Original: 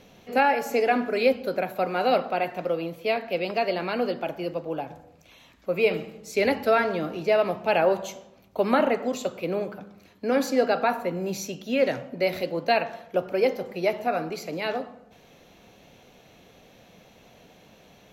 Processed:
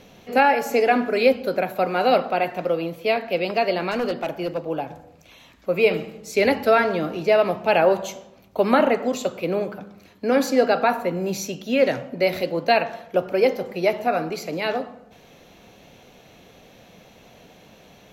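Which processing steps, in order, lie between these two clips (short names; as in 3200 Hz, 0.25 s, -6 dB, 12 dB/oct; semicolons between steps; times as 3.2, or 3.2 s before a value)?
3.91–4.58 hard clip -23.5 dBFS, distortion -27 dB; gain +4 dB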